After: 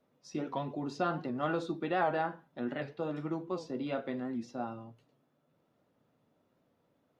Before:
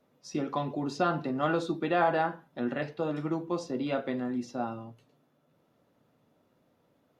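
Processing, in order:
high-shelf EQ 6,800 Hz −5.5 dB
wow of a warped record 78 rpm, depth 100 cents
level −4.5 dB

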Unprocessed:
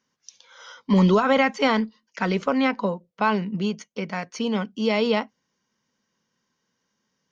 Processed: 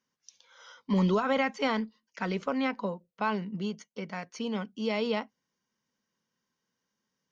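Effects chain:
0:03.35–0:04.13: notch filter 2,500 Hz, Q 11
level −8 dB

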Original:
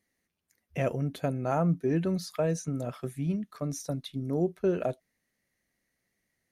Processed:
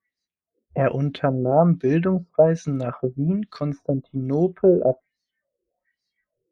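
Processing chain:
auto-filter low-pass sine 1.2 Hz 420–4,500 Hz
noise reduction from a noise print of the clip's start 21 dB
level +7.5 dB

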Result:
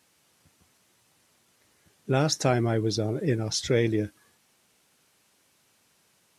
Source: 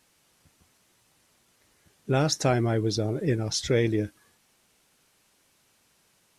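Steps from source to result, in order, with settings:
high-pass filter 73 Hz

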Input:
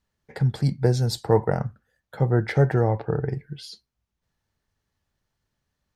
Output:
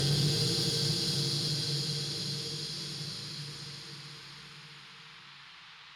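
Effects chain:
in parallel at +0.5 dB: downward compressor, threshold −35 dBFS, peak gain reduction 21 dB
on the sum: echo machine with several playback heads 70 ms, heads second and third, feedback 41%, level −9.5 dB
noise gate −47 dBFS, range −11 dB
extreme stretch with random phases 8.7×, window 0.50 s, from 0:03.62
tube saturation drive 27 dB, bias 0.3
noise in a band 920–4,200 Hz −58 dBFS
level +6 dB

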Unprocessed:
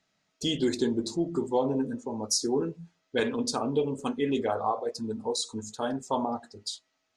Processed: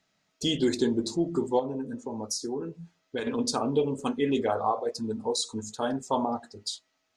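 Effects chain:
0:01.59–0:03.27: downward compressor 3 to 1, threshold −33 dBFS, peak gain reduction 8.5 dB
level +1.5 dB

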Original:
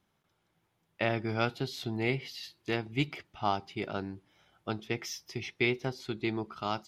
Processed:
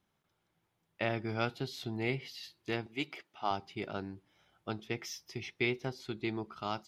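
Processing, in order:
0:02.86–0:03.51: high-pass filter 290 Hz 12 dB per octave
level −3.5 dB

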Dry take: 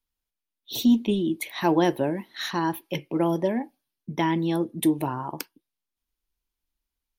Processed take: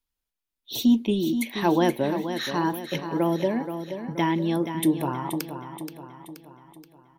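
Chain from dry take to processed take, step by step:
repeating echo 477 ms, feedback 49%, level −9 dB

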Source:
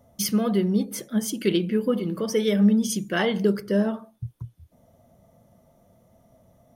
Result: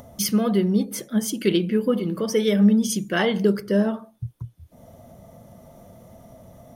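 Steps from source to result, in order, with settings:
upward compression, threshold −38 dBFS
level +2 dB

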